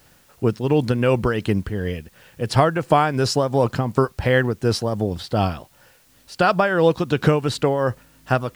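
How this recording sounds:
tremolo triangle 2.8 Hz, depth 60%
a quantiser's noise floor 10 bits, dither triangular

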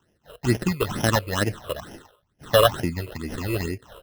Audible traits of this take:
aliases and images of a low sample rate 2,300 Hz, jitter 0%
phaser sweep stages 8, 2.2 Hz, lowest notch 230–1,200 Hz

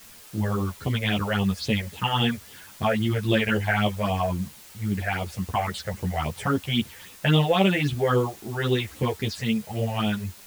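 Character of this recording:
phaser sweep stages 6, 3.7 Hz, lowest notch 260–1,600 Hz
a quantiser's noise floor 8 bits, dither triangular
a shimmering, thickened sound

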